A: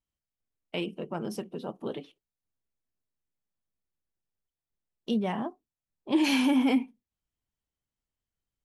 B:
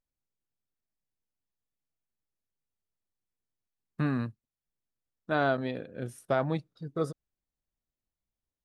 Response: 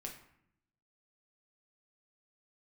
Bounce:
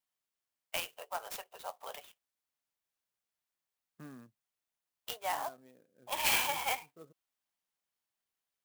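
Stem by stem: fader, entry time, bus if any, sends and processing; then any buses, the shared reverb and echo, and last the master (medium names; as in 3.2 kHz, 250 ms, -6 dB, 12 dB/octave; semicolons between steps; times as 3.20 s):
+1.0 dB, 0.00 s, no send, steep high-pass 650 Hz 36 dB/octave; treble shelf 10 kHz +9 dB
-14.5 dB, 0.00 s, no send, local Wiener filter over 9 samples; high-pass 180 Hz; auto duck -11 dB, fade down 1.65 s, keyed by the first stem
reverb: none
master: sampling jitter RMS 0.045 ms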